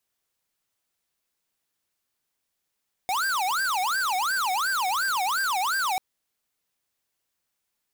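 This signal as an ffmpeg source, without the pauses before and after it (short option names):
-f lavfi -i "aevalsrc='0.0531*(2*lt(mod((1160*t-430/(2*PI*2.8)*sin(2*PI*2.8*t)),1),0.5)-1)':d=2.89:s=44100"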